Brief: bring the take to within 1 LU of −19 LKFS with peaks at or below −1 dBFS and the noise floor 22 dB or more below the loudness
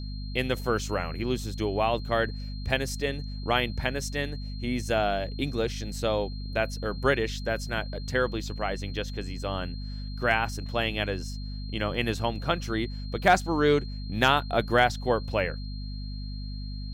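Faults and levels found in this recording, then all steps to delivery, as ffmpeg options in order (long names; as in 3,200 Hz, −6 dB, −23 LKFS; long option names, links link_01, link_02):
mains hum 50 Hz; hum harmonics up to 250 Hz; level of the hum −33 dBFS; interfering tone 4,200 Hz; level of the tone −46 dBFS; integrated loudness −28.5 LKFS; sample peak −9.0 dBFS; target loudness −19.0 LKFS
→ -af "bandreject=frequency=50:width_type=h:width=6,bandreject=frequency=100:width_type=h:width=6,bandreject=frequency=150:width_type=h:width=6,bandreject=frequency=200:width_type=h:width=6,bandreject=frequency=250:width_type=h:width=6"
-af "bandreject=frequency=4200:width=30"
-af "volume=9.5dB,alimiter=limit=-1dB:level=0:latency=1"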